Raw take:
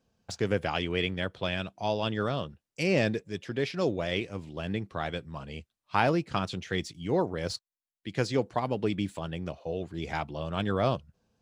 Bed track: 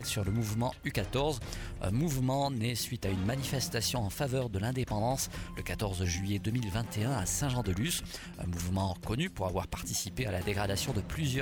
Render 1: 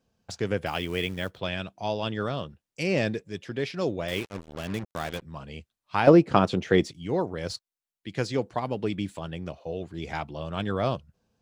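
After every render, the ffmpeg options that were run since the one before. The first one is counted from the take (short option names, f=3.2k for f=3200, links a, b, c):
-filter_complex "[0:a]asettb=1/sr,asplit=3[a][b][c];[a]atrim=end=0.664[d];[b]atrim=start=0.66:end=1.4,asetpts=PTS-STARTPTS,afade=t=in:d=0.004:c=qsin,afade=t=out:st=0.736:d=0.004:c=qsin,acrusher=bits=5:mode=log:mix=0:aa=0.000001[e];[c]atrim=start=1.396[f];[d][e]acrossfade=d=0.004:c1=hsin:c2=qsin[g];[g][f]acrossfade=d=0.004:c1=qsin:c2=hsin,asettb=1/sr,asplit=3[h][i][j];[h]atrim=end=4.084[k];[i]atrim=start=4.08:end=5.22,asetpts=PTS-STARTPTS,afade=t=in:d=0.004:c=qsin,afade=t=out:st=1.136:d=0.004:c=qsin,acrusher=bits=5:mix=0:aa=0.5[l];[j]atrim=start=5.216[m];[k][l]acrossfade=d=0.004:c1=hsin:c2=qsin[n];[n][m]acrossfade=d=0.004:c1=qsin:c2=hsin,asettb=1/sr,asplit=3[o][p][q];[o]atrim=end=6.074[r];[p]atrim=start=6.07:end=6.91,asetpts=PTS-STARTPTS,afade=t=in:d=0.004:c=qsin,afade=t=out:st=0.836:d=0.004:c=qsin,equalizer=f=440:w=0.31:g=13[s];[q]atrim=start=6.906[t];[r][s]acrossfade=d=0.004:c1=hsin:c2=qsin[u];[u][t]acrossfade=d=0.004:c1=qsin:c2=hsin"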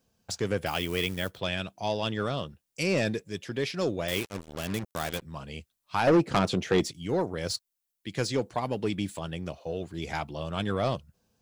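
-af "asoftclip=type=tanh:threshold=-16dB,crystalizer=i=1.5:c=0"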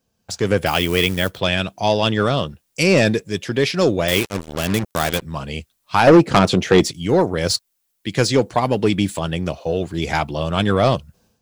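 -af "dynaudnorm=f=250:g=3:m=12.5dB"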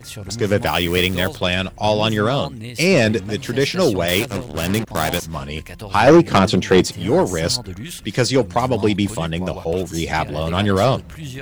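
-filter_complex "[1:a]volume=0.5dB[a];[0:a][a]amix=inputs=2:normalize=0"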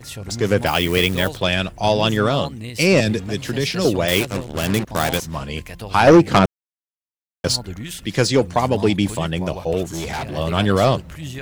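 -filter_complex "[0:a]asettb=1/sr,asplit=3[a][b][c];[a]atrim=end=3.004[d];[b]atrim=start=3:end=3.85,asetpts=PTS-STARTPTS,afade=t=in:d=0.004:c=qsin,afade=t=out:st=0.846:d=0.004:c=qsin,acrossover=split=240|3000[e][f][g];[f]acompressor=threshold=-21dB:ratio=6:attack=3.2:release=140:knee=2.83:detection=peak[h];[e][h][g]amix=inputs=3:normalize=0[i];[c]atrim=start=3.846[j];[d][i]acrossfade=d=0.004:c1=hsin:c2=qsin[k];[k][j]acrossfade=d=0.004:c1=qsin:c2=hsin,asettb=1/sr,asplit=3[l][m][n];[l]atrim=end=9.844[o];[m]atrim=start=9.84:end=10.37,asetpts=PTS-STARTPTS,afade=t=in:d=0.004:c=qsin,afade=t=out:st=0.526:d=0.004:c=qsin,asoftclip=type=hard:threshold=-23dB[p];[n]atrim=start=10.366[q];[o][p]acrossfade=d=0.004:c1=hsin:c2=qsin[r];[r][q]acrossfade=d=0.004:c1=qsin:c2=hsin,asplit=3[s][t][u];[s]atrim=end=6.46,asetpts=PTS-STARTPTS,afade=t=out:st=6.456:d=0.004:c=hsin[v];[t]atrim=start=6.46:end=7.44,asetpts=PTS-STARTPTS,volume=0[w];[u]atrim=start=7.44,asetpts=PTS-STARTPTS,afade=t=in:d=0.004:c=hsin[x];[v][w][x]concat=n=3:v=0:a=1"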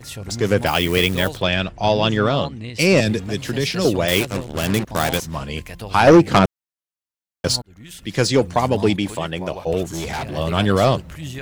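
-filter_complex "[0:a]asettb=1/sr,asplit=3[a][b][c];[a]atrim=end=1.424[d];[b]atrim=start=1.42:end=2.79,asetpts=PTS-STARTPTS,afade=t=in:d=0.004:c=qsin,afade=t=out:st=1.366:d=0.004:c=qsin,lowpass=5.2k[e];[c]atrim=start=2.786[f];[d][e]acrossfade=d=0.004:c1=hsin:c2=qsin[g];[g][f]acrossfade=d=0.004:c1=qsin:c2=hsin,asettb=1/sr,asplit=3[h][i][j];[h]atrim=end=8.964[k];[i]atrim=start=8.96:end=9.67,asetpts=PTS-STARTPTS,afade=t=in:d=0.004:c=qsin,afade=t=out:st=0.706:d=0.004:c=qsin,bass=f=250:g=-7,treble=f=4k:g=-4[l];[j]atrim=start=9.666[m];[k][l]acrossfade=d=0.004:c1=hsin:c2=qsin[n];[n][m]acrossfade=d=0.004:c1=qsin:c2=hsin,asplit=2[o][p];[o]atrim=end=7.62,asetpts=PTS-STARTPTS,afade=t=out:st=7.616:d=0.004:c=hsin[q];[p]atrim=start=7.62,asetpts=PTS-STARTPTS,afade=t=in:d=0.65[r];[q][r]concat=n=2:v=0:a=1"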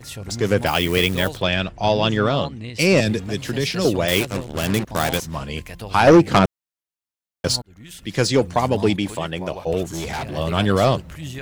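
-af "volume=-1dB"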